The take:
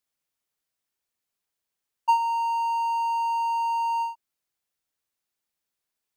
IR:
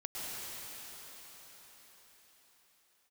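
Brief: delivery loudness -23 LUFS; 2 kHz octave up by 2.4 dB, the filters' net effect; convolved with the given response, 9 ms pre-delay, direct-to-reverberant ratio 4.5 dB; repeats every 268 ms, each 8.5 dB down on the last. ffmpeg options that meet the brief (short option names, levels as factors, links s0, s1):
-filter_complex "[0:a]equalizer=f=2000:t=o:g=4.5,aecho=1:1:268|536|804|1072:0.376|0.143|0.0543|0.0206,asplit=2[s0][s1];[1:a]atrim=start_sample=2205,adelay=9[s2];[s1][s2]afir=irnorm=-1:irlink=0,volume=0.422[s3];[s0][s3]amix=inputs=2:normalize=0,volume=1.26"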